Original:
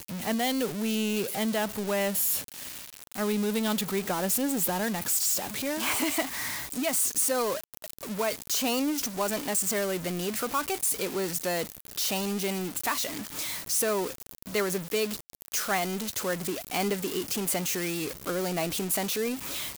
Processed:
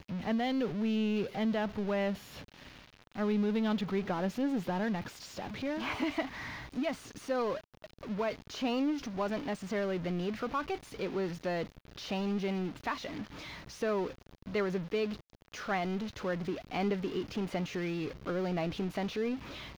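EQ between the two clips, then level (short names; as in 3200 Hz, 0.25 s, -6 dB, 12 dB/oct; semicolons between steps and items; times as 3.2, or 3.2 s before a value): air absorption 240 m; low shelf 170 Hz +7.5 dB; notch 7700 Hz, Q 11; -4.0 dB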